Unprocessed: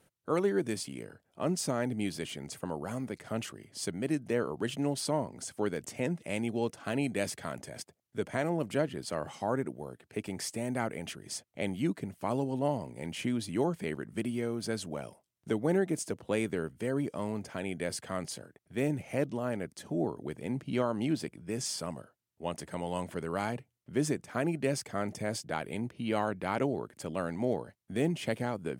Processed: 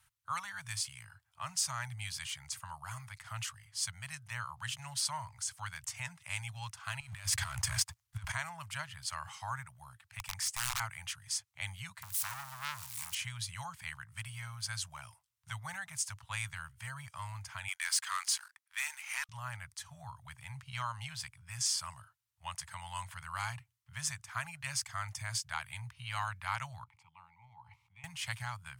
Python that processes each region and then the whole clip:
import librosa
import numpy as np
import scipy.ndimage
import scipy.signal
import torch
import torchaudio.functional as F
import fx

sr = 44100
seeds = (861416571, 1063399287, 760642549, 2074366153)

y = fx.chain(x, sr, fx.low_shelf(hz=130.0, db=9.5),
    fx.over_compress(threshold_db=-42.0, ratio=-1.0),
    fx.leveller(passes=2), at=(7.0, 8.32))
y = fx.chain(y, sr, fx.highpass(hz=50.0, slope=24),
    fx.peak_eq(hz=4100.0, db=-3.0, octaves=0.46),
    fx.overflow_wrap(gain_db=28.0), at=(10.19, 10.8))
y = fx.chain(y, sr, fx.crossing_spikes(level_db=-31.0),
    fx.highpass(hz=97.0, slope=6),
    fx.transformer_sat(knee_hz=2200.0), at=(12.02, 13.15))
y = fx.chain(y, sr, fx.highpass(hz=1000.0, slope=24),
    fx.leveller(passes=2), at=(17.68, 19.29))
y = fx.chain(y, sr, fx.vowel_filter(vowel='u'),
    fx.low_shelf(hz=260.0, db=7.0),
    fx.sustainer(db_per_s=51.0), at=(26.84, 28.04))
y = fx.dynamic_eq(y, sr, hz=6200.0, q=1.1, threshold_db=-51.0, ratio=4.0, max_db=4)
y = scipy.signal.sosfilt(scipy.signal.ellip(3, 1.0, 60, [110.0, 1000.0], 'bandstop', fs=sr, output='sos'), y)
y = y * librosa.db_to_amplitude(1.0)